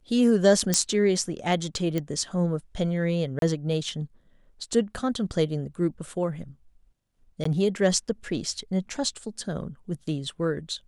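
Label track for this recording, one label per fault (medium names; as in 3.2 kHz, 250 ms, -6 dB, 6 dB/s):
0.740000	0.740000	pop -6 dBFS
1.980000	1.980000	pop -15 dBFS
3.390000	3.420000	dropout 32 ms
7.440000	7.450000	dropout 14 ms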